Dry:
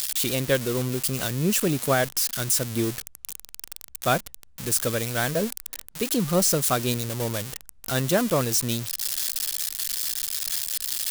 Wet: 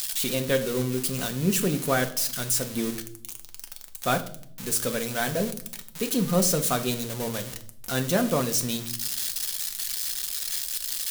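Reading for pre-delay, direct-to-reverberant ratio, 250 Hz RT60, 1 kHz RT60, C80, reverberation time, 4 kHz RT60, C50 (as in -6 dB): 4 ms, 5.0 dB, 1.0 s, 0.50 s, 17.5 dB, 0.60 s, 0.55 s, 14.5 dB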